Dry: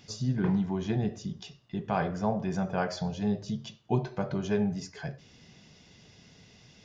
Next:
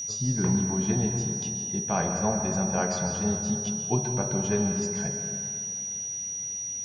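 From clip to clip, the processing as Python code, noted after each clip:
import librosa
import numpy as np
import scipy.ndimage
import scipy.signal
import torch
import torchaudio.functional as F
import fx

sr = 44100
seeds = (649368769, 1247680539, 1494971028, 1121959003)

y = fx.rev_plate(x, sr, seeds[0], rt60_s=2.6, hf_ratio=0.5, predelay_ms=115, drr_db=5.0)
y = y + 10.0 ** (-32.0 / 20.0) * np.sin(2.0 * np.pi * 5800.0 * np.arange(len(y)) / sr)
y = y * 10.0 ** (1.0 / 20.0)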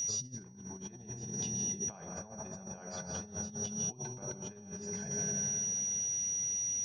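y = fx.over_compress(x, sr, threshold_db=-33.0, ratio=-0.5)
y = y * 10.0 ** (-5.5 / 20.0)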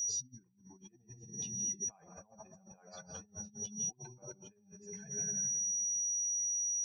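y = fx.bin_expand(x, sr, power=2.0)
y = fx.high_shelf(y, sr, hz=4600.0, db=6.0)
y = y * 10.0 ** (-3.5 / 20.0)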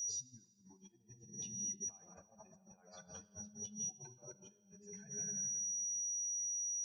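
y = fx.rev_fdn(x, sr, rt60_s=1.6, lf_ratio=0.7, hf_ratio=0.95, size_ms=29.0, drr_db=15.0)
y = y * 10.0 ** (-5.5 / 20.0)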